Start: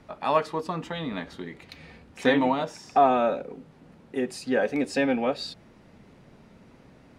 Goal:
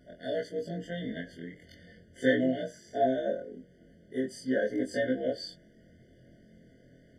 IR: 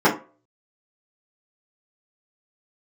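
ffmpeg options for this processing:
-af "afftfilt=real='re':imag='-im':win_size=2048:overlap=0.75,afftfilt=real='re*eq(mod(floor(b*sr/1024/720),2),0)':imag='im*eq(mod(floor(b*sr/1024/720),2),0)':win_size=1024:overlap=0.75"

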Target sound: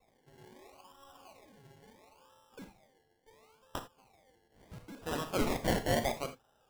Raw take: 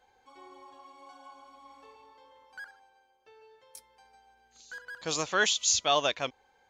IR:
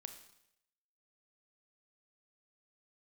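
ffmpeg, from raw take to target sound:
-filter_complex "[0:a]aexciter=amount=8.2:drive=6.2:freq=8.5k,acrusher=samples=28:mix=1:aa=0.000001:lfo=1:lforange=16.8:lforate=0.73[a];[1:a]atrim=start_sample=2205,atrim=end_sample=3969[b];[a][b]afir=irnorm=-1:irlink=0"

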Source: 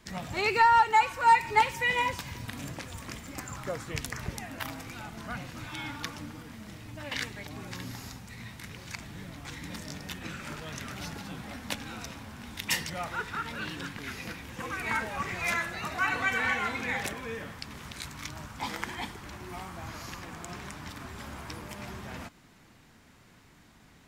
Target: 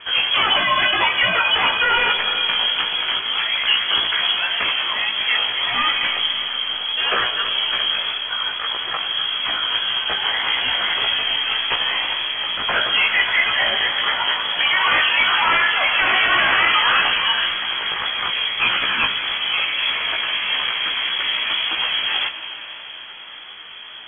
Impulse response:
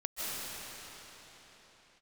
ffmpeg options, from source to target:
-filter_complex "[0:a]aeval=exprs='0.299*sin(PI/2*7.94*val(0)/0.299)':c=same,lowpass=f=2.9k:t=q:w=0.5098,lowpass=f=2.9k:t=q:w=0.6013,lowpass=f=2.9k:t=q:w=0.9,lowpass=f=2.9k:t=q:w=2.563,afreqshift=-3400,asplit=2[a][b];[1:a]atrim=start_sample=2205[c];[b][c]afir=irnorm=-1:irlink=0,volume=-14.5dB[d];[a][d]amix=inputs=2:normalize=0,flanger=delay=15.5:depth=3:speed=1.7"

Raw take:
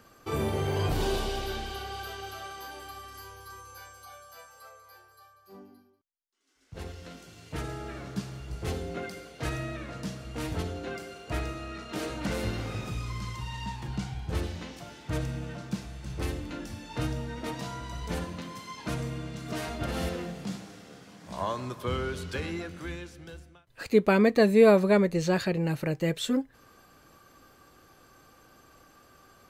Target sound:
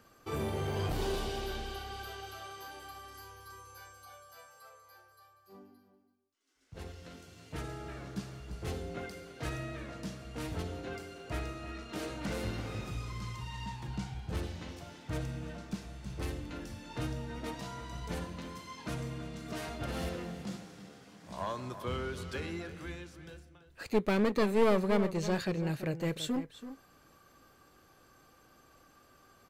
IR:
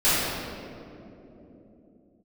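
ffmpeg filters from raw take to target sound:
-filter_complex "[0:a]aeval=exprs='clip(val(0),-1,0.0562)':c=same,asplit=2[a][b];[b]adelay=332.4,volume=-12dB,highshelf=f=4k:g=-7.48[c];[a][c]amix=inputs=2:normalize=0,volume=-5dB"

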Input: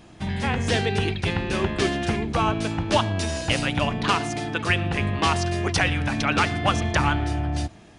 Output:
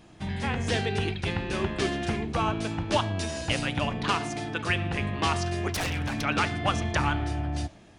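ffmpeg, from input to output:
-filter_complex "[0:a]asettb=1/sr,asplit=3[a][b][c];[a]atrim=end=5.744[d];[b]atrim=start=5.74:end=6.21,asetpts=PTS-STARTPTS,afade=t=in:d=0.004:c=qsin,afade=t=out:st=0.466:d=0.004:c=qsin,aeval=exprs='0.106*(abs(mod(val(0)/0.106+3,4)-2)-1)':c=same[e];[c]atrim=start=6.206[f];[d][e]acrossfade=d=0.004:c1=hsin:c2=qsin[g];[g][f]acrossfade=d=0.004:c1=qsin:c2=hsin,flanger=delay=6.3:depth=9.9:regen=-88:speed=0.31:shape=sinusoidal"

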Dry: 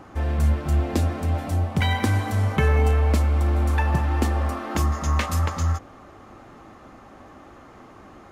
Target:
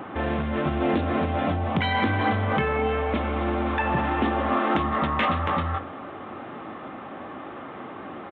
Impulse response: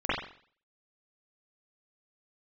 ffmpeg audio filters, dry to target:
-filter_complex "[0:a]asplit=2[a][b];[b]adelay=22,volume=-13.5dB[c];[a][c]amix=inputs=2:normalize=0,asplit=2[d][e];[1:a]atrim=start_sample=2205[f];[e][f]afir=irnorm=-1:irlink=0,volume=-28.5dB[g];[d][g]amix=inputs=2:normalize=0,aresample=8000,aresample=44100,alimiter=limit=-20.5dB:level=0:latency=1:release=30,highpass=160,asoftclip=type=tanh:threshold=-15dB,volume=8.5dB"

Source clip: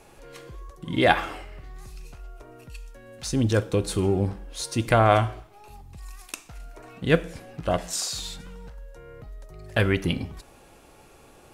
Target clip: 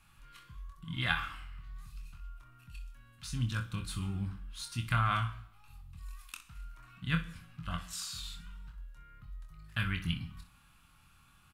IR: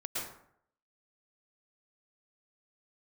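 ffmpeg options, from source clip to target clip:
-filter_complex "[0:a]firequalizer=gain_entry='entry(170,0);entry(430,-30);entry(1200,-3);entry(1900,-13);entry(2900,-11);entry(5900,-25)':delay=0.05:min_phase=1,crystalizer=i=9.5:c=0,asplit=2[a][b];[b]adelay=23,volume=-12dB[c];[a][c]amix=inputs=2:normalize=0,aecho=1:1:25|62:0.447|0.211,asplit=2[d][e];[1:a]atrim=start_sample=2205[f];[e][f]afir=irnorm=-1:irlink=0,volume=-22.5dB[g];[d][g]amix=inputs=2:normalize=0,volume=-9dB"

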